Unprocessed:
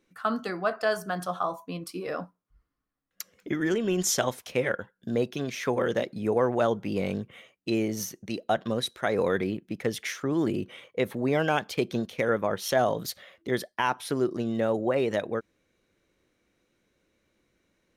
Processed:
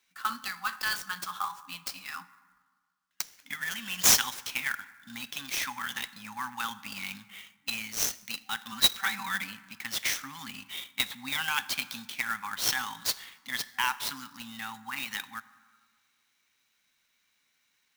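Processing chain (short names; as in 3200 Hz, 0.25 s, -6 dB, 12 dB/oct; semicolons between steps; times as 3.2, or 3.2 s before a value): weighting filter ITU-R 468; FFT band-reject 280–770 Hz; 8.72–9.44 comb 5.2 ms, depth 94%; 10.7–11.45 bell 3700 Hz +12.5 dB 0.22 oct; plate-style reverb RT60 1.6 s, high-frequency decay 0.45×, DRR 14 dB; clock jitter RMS 0.023 ms; gain -3.5 dB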